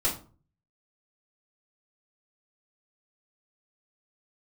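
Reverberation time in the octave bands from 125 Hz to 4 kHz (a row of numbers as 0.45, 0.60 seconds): 0.70, 0.50, 0.40, 0.40, 0.30, 0.25 seconds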